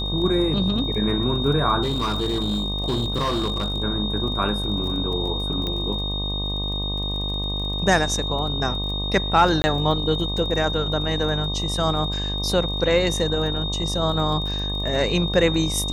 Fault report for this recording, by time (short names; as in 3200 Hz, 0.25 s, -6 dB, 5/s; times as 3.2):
buzz 50 Hz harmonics 24 -28 dBFS
crackle 25/s -31 dBFS
tone 3700 Hz -27 dBFS
1.82–3.83 clipped -19 dBFS
5.67 pop -15 dBFS
9.62–9.64 gap 20 ms